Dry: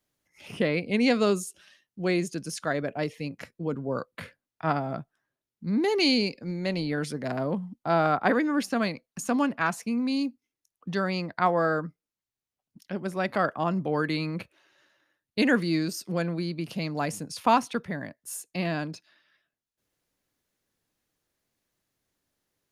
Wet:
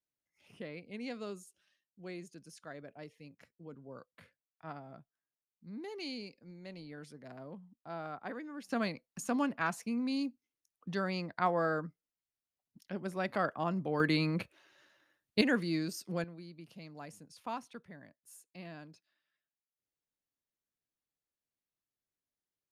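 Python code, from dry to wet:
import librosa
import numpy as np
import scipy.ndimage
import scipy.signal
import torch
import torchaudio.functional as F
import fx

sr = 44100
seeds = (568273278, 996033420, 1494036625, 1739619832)

y = fx.gain(x, sr, db=fx.steps((0.0, -19.0), (8.69, -7.0), (14.0, -1.0), (15.41, -7.5), (16.24, -18.5)))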